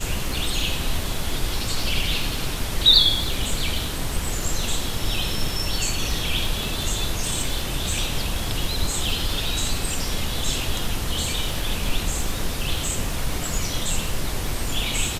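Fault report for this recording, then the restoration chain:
crackle 30/s -27 dBFS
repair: de-click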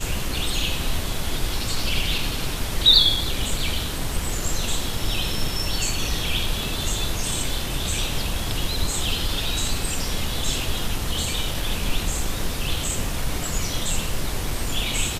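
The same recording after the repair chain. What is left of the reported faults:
none

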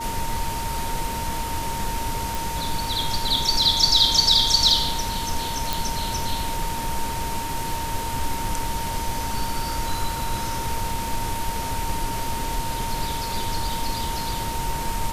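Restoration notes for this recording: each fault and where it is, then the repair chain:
tone 920 Hz -29 dBFS
2.35 pop
5.73 pop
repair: de-click; notch 920 Hz, Q 30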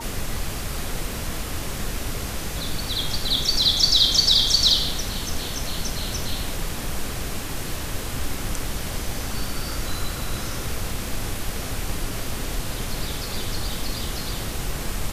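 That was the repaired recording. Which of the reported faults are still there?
none

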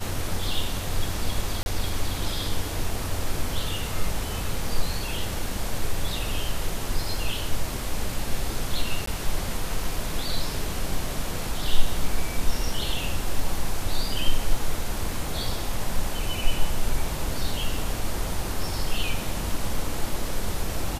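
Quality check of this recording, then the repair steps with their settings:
1.63–1.66 gap 31 ms
9.06–9.07 gap 14 ms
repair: interpolate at 1.63, 31 ms; interpolate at 9.06, 14 ms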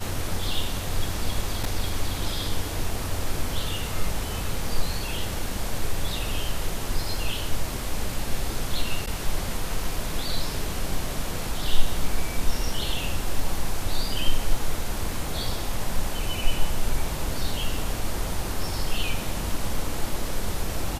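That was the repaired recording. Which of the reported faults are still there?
none

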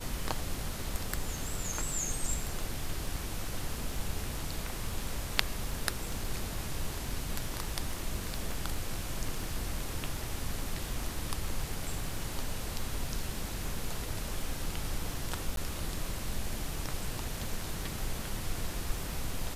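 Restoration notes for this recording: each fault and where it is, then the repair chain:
crackle 49/s -40 dBFS
15.56–15.57 gap 12 ms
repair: de-click; interpolate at 15.56, 12 ms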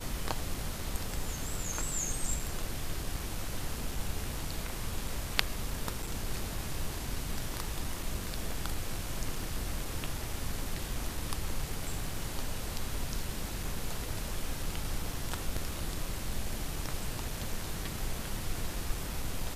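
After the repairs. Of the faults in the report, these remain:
none

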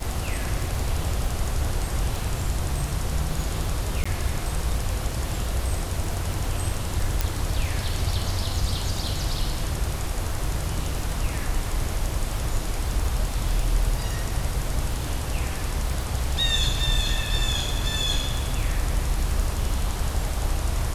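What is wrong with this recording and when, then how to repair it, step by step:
crackle 45/s -30 dBFS
4.04–4.05 gap 15 ms
7.21 pop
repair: de-click; interpolate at 4.04, 15 ms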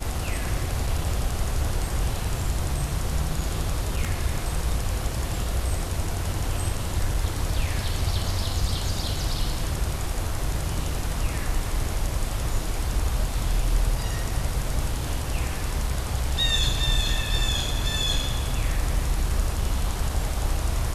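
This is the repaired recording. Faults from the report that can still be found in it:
7.21 pop

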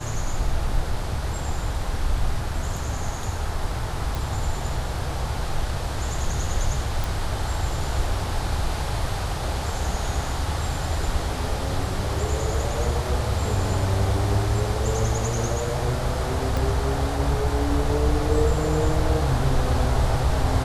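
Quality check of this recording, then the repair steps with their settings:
4.15 pop
7.04 pop
16.57 pop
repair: de-click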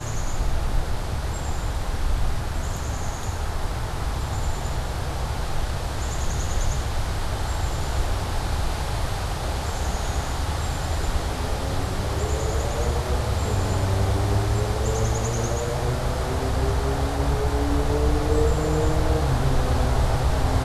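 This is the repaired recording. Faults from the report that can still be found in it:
16.57 pop

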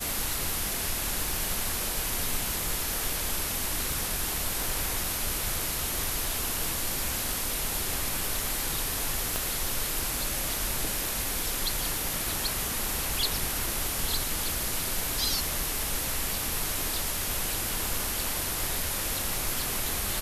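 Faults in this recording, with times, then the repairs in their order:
crackle 46/s -35 dBFS
3.92 pop
9.36 pop -12 dBFS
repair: de-click

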